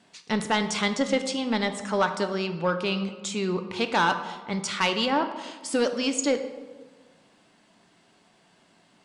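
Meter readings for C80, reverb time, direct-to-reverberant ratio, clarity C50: 11.5 dB, 1.4 s, 7.5 dB, 10.0 dB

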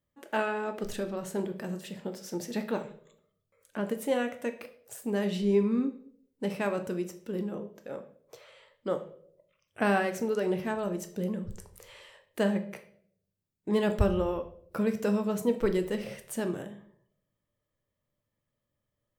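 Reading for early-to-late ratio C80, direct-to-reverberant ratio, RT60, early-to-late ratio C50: 16.5 dB, 7.0 dB, 0.65 s, 13.0 dB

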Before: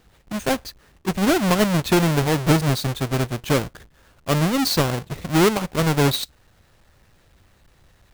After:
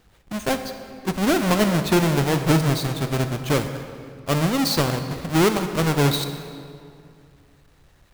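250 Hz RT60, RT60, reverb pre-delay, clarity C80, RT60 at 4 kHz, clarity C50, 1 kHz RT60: 2.6 s, 2.4 s, 31 ms, 9.5 dB, 1.6 s, 8.5 dB, 2.3 s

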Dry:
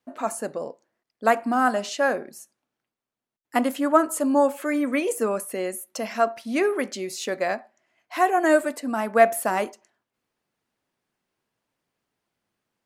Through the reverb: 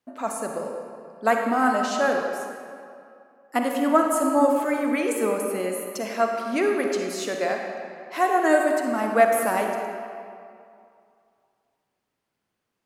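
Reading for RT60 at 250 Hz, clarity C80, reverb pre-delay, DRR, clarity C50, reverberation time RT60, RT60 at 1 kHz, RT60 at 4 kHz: 2.3 s, 4.0 dB, 39 ms, 2.5 dB, 3.0 dB, 2.5 s, 2.5 s, 1.5 s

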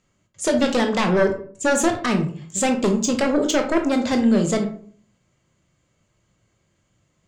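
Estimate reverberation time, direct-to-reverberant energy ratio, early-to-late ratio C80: 0.50 s, 4.5 dB, 14.0 dB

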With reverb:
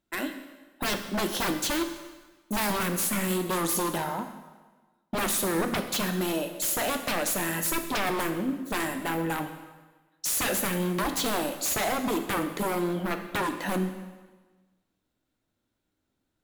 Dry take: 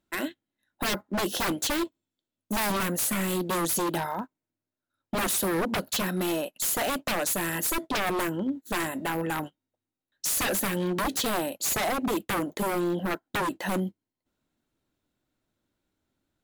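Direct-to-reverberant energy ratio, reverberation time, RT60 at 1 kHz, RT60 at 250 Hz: 6.5 dB, 1.3 s, 1.3 s, 1.3 s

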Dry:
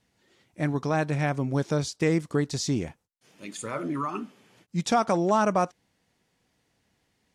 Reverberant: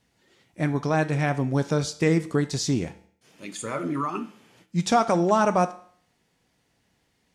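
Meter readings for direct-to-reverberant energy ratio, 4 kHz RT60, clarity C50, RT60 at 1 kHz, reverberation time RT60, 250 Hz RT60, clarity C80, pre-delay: 10.0 dB, 0.55 s, 15.5 dB, 0.55 s, 0.55 s, 0.55 s, 19.0 dB, 6 ms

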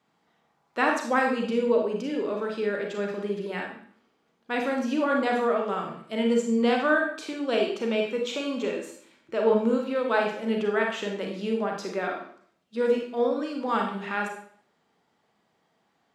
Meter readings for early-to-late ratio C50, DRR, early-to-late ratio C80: 4.5 dB, 1.0 dB, 8.5 dB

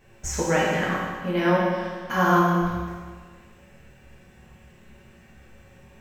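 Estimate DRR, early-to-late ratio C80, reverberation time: -7.0 dB, 1.0 dB, 1.6 s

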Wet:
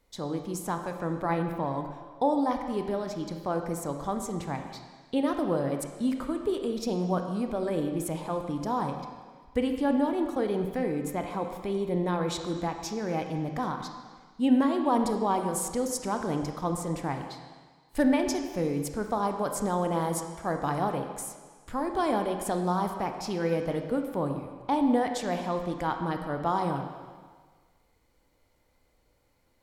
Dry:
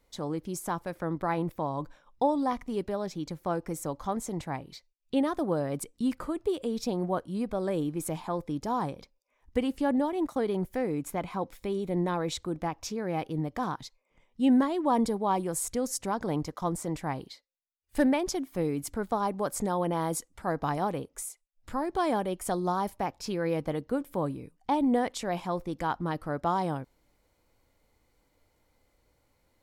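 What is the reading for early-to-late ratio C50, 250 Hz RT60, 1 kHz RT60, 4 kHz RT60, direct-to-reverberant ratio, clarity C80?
6.0 dB, 1.4 s, 1.6 s, 1.6 s, 5.0 dB, 7.5 dB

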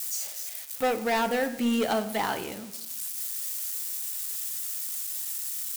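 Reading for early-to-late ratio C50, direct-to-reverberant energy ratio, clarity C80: 13.0 dB, 10.0 dB, 15.5 dB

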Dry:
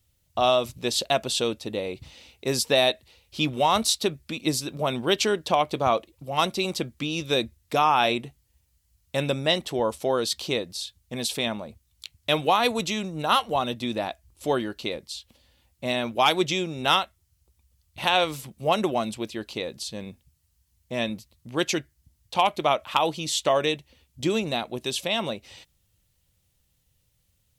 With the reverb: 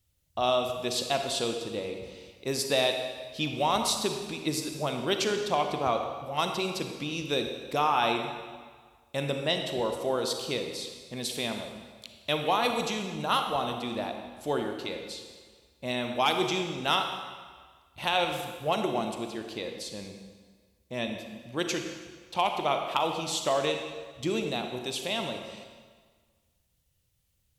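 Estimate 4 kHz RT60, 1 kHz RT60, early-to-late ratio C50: 1.4 s, 1.7 s, 5.0 dB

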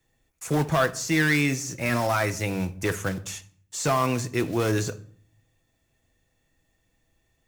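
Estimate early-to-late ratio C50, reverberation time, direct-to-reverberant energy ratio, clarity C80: 16.5 dB, 0.55 s, 8.0 dB, 21.5 dB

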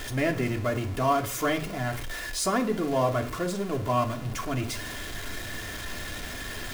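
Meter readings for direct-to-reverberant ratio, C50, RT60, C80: 2.0 dB, 14.5 dB, 0.45 s, 17.5 dB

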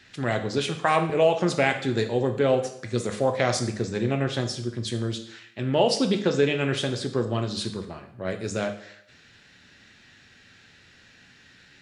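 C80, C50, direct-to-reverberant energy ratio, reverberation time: 13.0 dB, 10.0 dB, 6.0 dB, 0.70 s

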